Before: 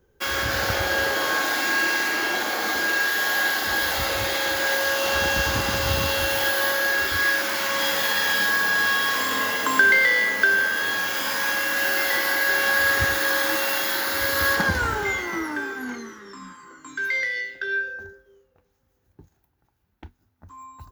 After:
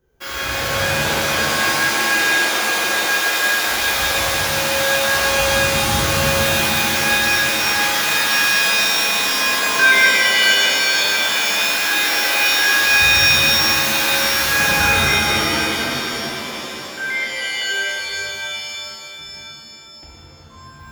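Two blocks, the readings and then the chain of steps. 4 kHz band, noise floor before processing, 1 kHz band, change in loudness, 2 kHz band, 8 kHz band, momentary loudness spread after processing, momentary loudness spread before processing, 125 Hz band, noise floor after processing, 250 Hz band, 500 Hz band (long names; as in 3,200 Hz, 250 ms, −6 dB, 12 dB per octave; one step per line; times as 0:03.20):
+10.0 dB, −69 dBFS, +5.5 dB, +6.0 dB, +4.5 dB, +10.0 dB, 13 LU, 8 LU, +6.5 dB, −40 dBFS, +5.5 dB, +4.5 dB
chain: reverb with rising layers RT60 3.3 s, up +7 semitones, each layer −2 dB, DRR −7.5 dB
level −5 dB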